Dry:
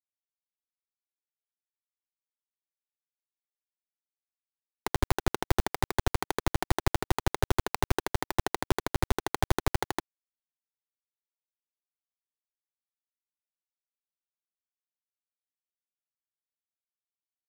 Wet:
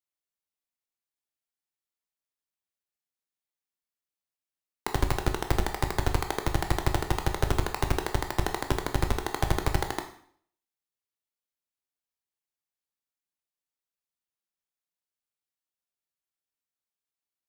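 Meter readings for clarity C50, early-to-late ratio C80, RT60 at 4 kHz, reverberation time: 10.5 dB, 13.5 dB, 0.55 s, 0.60 s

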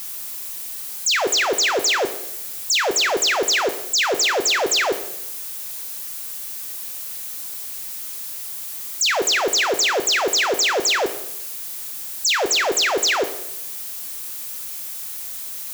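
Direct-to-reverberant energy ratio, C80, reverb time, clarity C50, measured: 9.0 dB, 14.5 dB, 0.85 s, 11.5 dB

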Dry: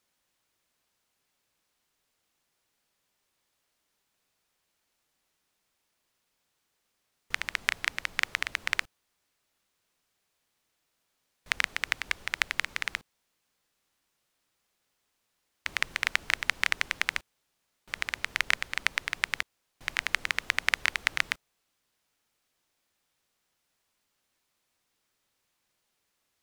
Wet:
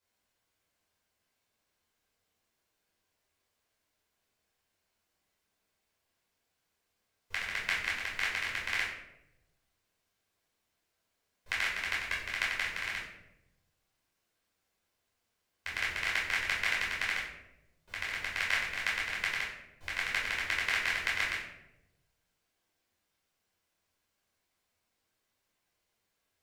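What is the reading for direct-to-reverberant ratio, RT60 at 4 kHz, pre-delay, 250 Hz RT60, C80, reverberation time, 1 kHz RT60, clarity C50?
−4.5 dB, 0.55 s, 9 ms, 1.2 s, 7.0 dB, 0.95 s, 0.75 s, 3.5 dB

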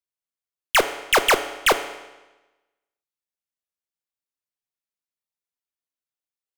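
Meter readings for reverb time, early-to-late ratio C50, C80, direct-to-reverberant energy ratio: 1.1 s, 11.5 dB, 13.5 dB, 9.0 dB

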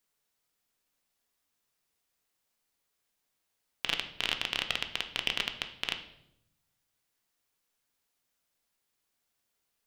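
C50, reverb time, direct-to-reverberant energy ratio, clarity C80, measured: 11.0 dB, 0.80 s, 5.5 dB, 13.5 dB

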